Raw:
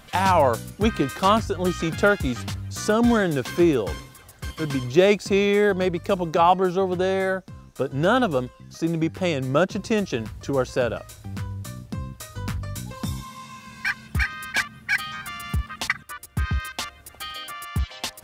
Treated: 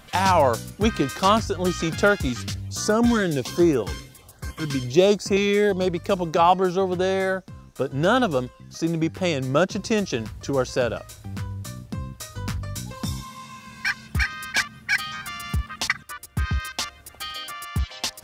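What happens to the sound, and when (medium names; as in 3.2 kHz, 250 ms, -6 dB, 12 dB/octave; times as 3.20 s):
2.29–5.88 s: LFO notch saw up 1.3 Hz 500–4600 Hz
whole clip: dynamic bell 5.4 kHz, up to +6 dB, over -48 dBFS, Q 1.5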